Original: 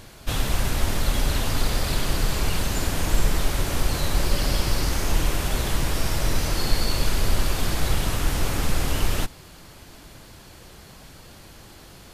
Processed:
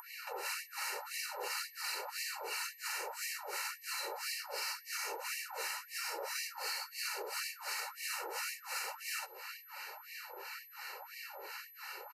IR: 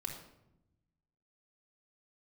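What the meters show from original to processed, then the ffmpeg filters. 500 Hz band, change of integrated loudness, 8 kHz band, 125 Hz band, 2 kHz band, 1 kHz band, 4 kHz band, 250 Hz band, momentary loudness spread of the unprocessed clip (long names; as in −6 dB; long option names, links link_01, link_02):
−15.0 dB, −14.0 dB, −10.5 dB, below −40 dB, −7.5 dB, −10.5 dB, −11.5 dB, −33.5 dB, 21 LU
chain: -filter_complex "[0:a]asuperstop=centerf=3400:order=8:qfactor=3.9,acrossover=split=1000[link_01][link_02];[link_01]aeval=exprs='val(0)*(1-1/2+1/2*cos(2*PI*2.9*n/s))':channel_layout=same[link_03];[link_02]aeval=exprs='val(0)*(1-1/2-1/2*cos(2*PI*2.9*n/s))':channel_layout=same[link_04];[link_03][link_04]amix=inputs=2:normalize=0,acrossover=split=420 3900:gain=0.1 1 0.2[link_05][link_06][link_07];[link_05][link_06][link_07]amix=inputs=3:normalize=0,aecho=1:1:2.2:0.9,acrossover=split=5300[link_08][link_09];[link_08]acompressor=threshold=-43dB:ratio=6[link_10];[link_10][link_09]amix=inputs=2:normalize=0,aeval=exprs='val(0)+0.000708*sin(2*PI*12000*n/s)':channel_layout=same,asplit=2[link_11][link_12];[1:a]atrim=start_sample=2205,afade=type=out:start_time=0.16:duration=0.01,atrim=end_sample=7497[link_13];[link_12][link_13]afir=irnorm=-1:irlink=0,volume=-16.5dB[link_14];[link_11][link_14]amix=inputs=2:normalize=0,alimiter=level_in=11.5dB:limit=-24dB:level=0:latency=1:release=176,volume=-11.5dB,acompressor=mode=upward:threshold=-53dB:ratio=2.5,afftfilt=real='re*gte(b*sr/1024,330*pow(1800/330,0.5+0.5*sin(2*PI*1.9*pts/sr)))':imag='im*gte(b*sr/1024,330*pow(1800/330,0.5+0.5*sin(2*PI*1.9*pts/sr)))':win_size=1024:overlap=0.75,volume=7dB"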